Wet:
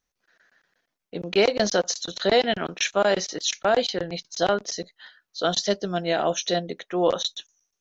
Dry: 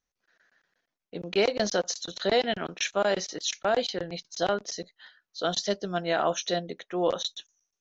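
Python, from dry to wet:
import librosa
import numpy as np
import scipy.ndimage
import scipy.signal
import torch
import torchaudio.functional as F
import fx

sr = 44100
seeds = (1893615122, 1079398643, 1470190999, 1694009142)

y = fx.dynamic_eq(x, sr, hz=1200.0, q=1.3, threshold_db=-40.0, ratio=4.0, max_db=-7, at=(5.84, 6.55))
y = y * librosa.db_to_amplitude(4.5)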